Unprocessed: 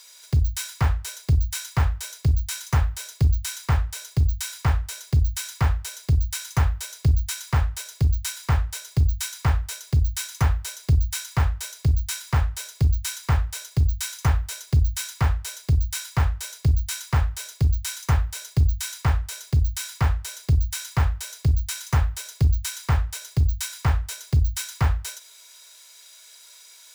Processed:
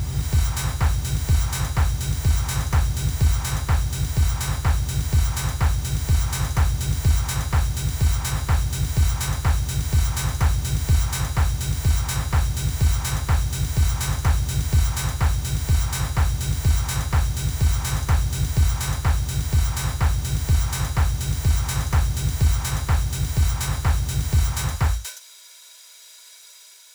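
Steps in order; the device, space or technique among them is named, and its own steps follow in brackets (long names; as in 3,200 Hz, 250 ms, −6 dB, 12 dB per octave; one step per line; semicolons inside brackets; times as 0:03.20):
reverse reverb (reversed playback; convolution reverb RT60 2.4 s, pre-delay 116 ms, DRR 1 dB; reversed playback)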